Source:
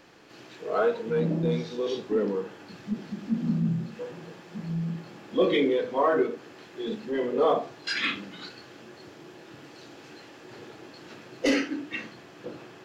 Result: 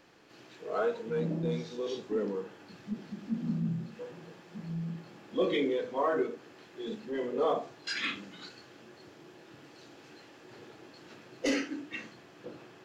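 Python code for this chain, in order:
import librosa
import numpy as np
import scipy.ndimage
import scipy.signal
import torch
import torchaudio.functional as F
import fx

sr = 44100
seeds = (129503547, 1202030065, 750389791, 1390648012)

y = fx.dynamic_eq(x, sr, hz=6900.0, q=2.1, threshold_db=-58.0, ratio=4.0, max_db=5)
y = y * librosa.db_to_amplitude(-6.0)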